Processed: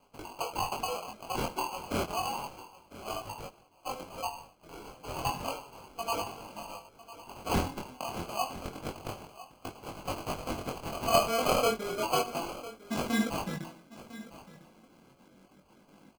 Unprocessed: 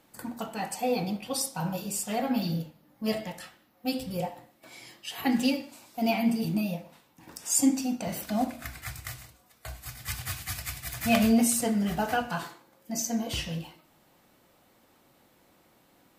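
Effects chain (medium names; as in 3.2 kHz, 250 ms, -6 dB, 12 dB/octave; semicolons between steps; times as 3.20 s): random holes in the spectrogram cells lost 22%; dynamic bell 7.9 kHz, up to +4 dB, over -47 dBFS, Q 1.3; in parallel at -3 dB: compression, threshold -36 dBFS, peak gain reduction 17 dB; on the sum: high-pass sweep 980 Hz -> 180 Hz, 10.06–13.84 s; sample-and-hold 24×; chorus 0.31 Hz, delay 19.5 ms, depth 4.2 ms; on a send: delay 1002 ms -16.5 dB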